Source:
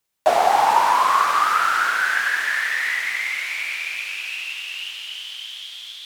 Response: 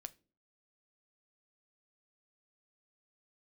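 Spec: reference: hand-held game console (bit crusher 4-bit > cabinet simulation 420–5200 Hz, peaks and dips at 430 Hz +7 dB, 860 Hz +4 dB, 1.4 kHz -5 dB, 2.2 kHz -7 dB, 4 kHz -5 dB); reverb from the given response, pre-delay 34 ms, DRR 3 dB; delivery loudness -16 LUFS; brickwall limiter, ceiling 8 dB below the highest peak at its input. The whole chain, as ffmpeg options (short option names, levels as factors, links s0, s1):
-filter_complex "[0:a]alimiter=limit=0.282:level=0:latency=1,asplit=2[s0][s1];[1:a]atrim=start_sample=2205,adelay=34[s2];[s1][s2]afir=irnorm=-1:irlink=0,volume=1.26[s3];[s0][s3]amix=inputs=2:normalize=0,acrusher=bits=3:mix=0:aa=0.000001,highpass=420,equalizer=f=430:t=q:w=4:g=7,equalizer=f=860:t=q:w=4:g=4,equalizer=f=1400:t=q:w=4:g=-5,equalizer=f=2200:t=q:w=4:g=-7,equalizer=f=4000:t=q:w=4:g=-5,lowpass=f=5200:w=0.5412,lowpass=f=5200:w=1.3066,volume=1.68"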